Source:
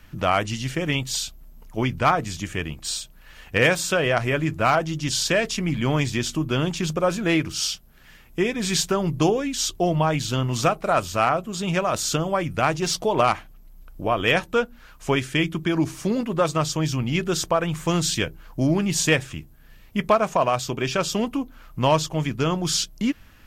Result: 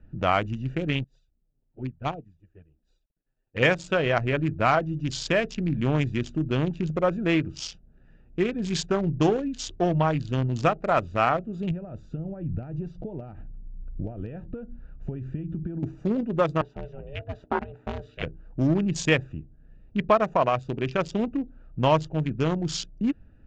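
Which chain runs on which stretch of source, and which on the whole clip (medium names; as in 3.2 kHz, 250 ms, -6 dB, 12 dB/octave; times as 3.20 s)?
1.04–3.63 s: small samples zeroed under -43.5 dBFS + touch-sensitive flanger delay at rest 9.7 ms, full sweep at -17.5 dBFS + upward expansion 2.5:1, over -34 dBFS
11.71–15.83 s: compression 16:1, threshold -30 dBFS + tone controls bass +9 dB, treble -4 dB
16.61–18.23 s: three-band isolator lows -13 dB, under 320 Hz, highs -16 dB, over 3.7 kHz + ring modulator 280 Hz
whole clip: local Wiener filter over 41 samples; Chebyshev low-pass 7.4 kHz, order 4; treble shelf 5.5 kHz -11 dB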